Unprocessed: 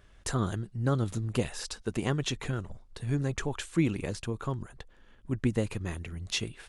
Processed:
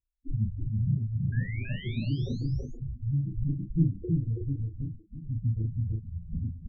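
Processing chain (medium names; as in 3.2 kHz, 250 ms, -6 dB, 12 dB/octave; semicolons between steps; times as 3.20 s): backward echo that repeats 542 ms, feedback 48%, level -12.5 dB; gate -41 dBFS, range -35 dB; reverb removal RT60 1.4 s; dynamic bell 1.4 kHz, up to +4 dB, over -54 dBFS, Q 4.1; in parallel at 0 dB: peak limiter -21.5 dBFS, peak gain reduction 7 dB; on the sum: decimation with a swept rate 42×, swing 100% 0.36 Hz; loudest bins only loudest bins 4; formant shift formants -5 st; painted sound rise, 1.32–2.41 s, 1.6–6.9 kHz -42 dBFS; distance through air 380 m; doubling 36 ms -4 dB; on a send: delay 327 ms -3 dB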